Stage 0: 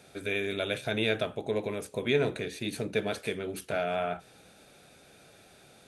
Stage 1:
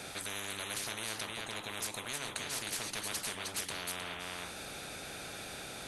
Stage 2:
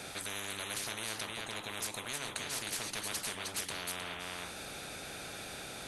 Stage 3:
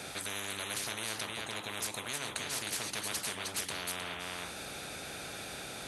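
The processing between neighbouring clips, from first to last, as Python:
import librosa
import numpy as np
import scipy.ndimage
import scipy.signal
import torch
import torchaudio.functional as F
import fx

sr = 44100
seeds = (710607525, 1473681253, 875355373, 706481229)

y1 = x + 10.0 ** (-9.0 / 20.0) * np.pad(x, (int(311 * sr / 1000.0), 0))[:len(x)]
y1 = fx.spectral_comp(y1, sr, ratio=10.0)
y1 = y1 * librosa.db_to_amplitude(-7.5)
y2 = y1
y3 = scipy.signal.sosfilt(scipy.signal.butter(2, 43.0, 'highpass', fs=sr, output='sos'), y2)
y3 = y3 * librosa.db_to_amplitude(1.5)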